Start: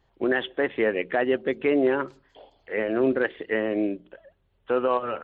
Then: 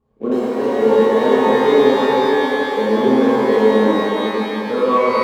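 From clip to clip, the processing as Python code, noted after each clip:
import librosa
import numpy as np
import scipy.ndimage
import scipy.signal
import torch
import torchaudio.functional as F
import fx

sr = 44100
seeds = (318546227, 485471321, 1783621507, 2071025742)

y = scipy.ndimage.median_filter(x, 25, mode='constant')
y = fx.small_body(y, sr, hz=(220.0, 460.0, 1100.0), ring_ms=55, db=17)
y = fx.rev_shimmer(y, sr, seeds[0], rt60_s=3.7, semitones=12, shimmer_db=-8, drr_db=-10.0)
y = y * 10.0 ** (-8.5 / 20.0)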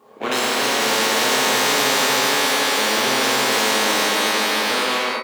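y = fx.fade_out_tail(x, sr, length_s=0.52)
y = scipy.signal.sosfilt(scipy.signal.butter(2, 510.0, 'highpass', fs=sr, output='sos'), y)
y = fx.spectral_comp(y, sr, ratio=4.0)
y = y * 10.0 ** (1.0 / 20.0)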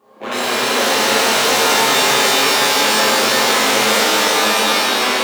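y = 10.0 ** (-8.0 / 20.0) * np.tanh(x / 10.0 ** (-8.0 / 20.0))
y = fx.rev_shimmer(y, sr, seeds[1], rt60_s=3.9, semitones=7, shimmer_db=-8, drr_db=-7.0)
y = y * 10.0 ** (-3.5 / 20.0)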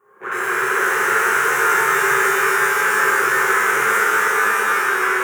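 y = fx.curve_eq(x, sr, hz=(170.0, 270.0, 380.0, 610.0, 1500.0, 4300.0, 6400.0, 10000.0), db=(0, -22, 8, -13, 13, -21, -4, 0))
y = y * 10.0 ** (-5.5 / 20.0)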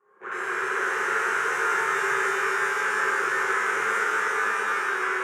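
y = fx.bandpass_edges(x, sr, low_hz=160.0, high_hz=7000.0)
y = y * 10.0 ** (-8.0 / 20.0)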